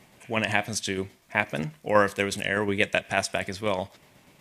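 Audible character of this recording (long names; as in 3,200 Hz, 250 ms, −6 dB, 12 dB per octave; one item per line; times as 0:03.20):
tremolo saw down 8.2 Hz, depth 40%
MP3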